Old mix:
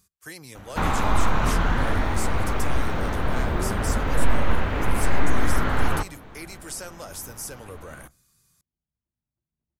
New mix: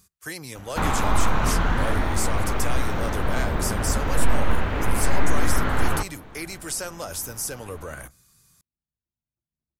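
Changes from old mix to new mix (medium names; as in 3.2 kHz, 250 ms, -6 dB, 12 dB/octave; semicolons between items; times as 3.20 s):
speech +5.5 dB; second sound -4.5 dB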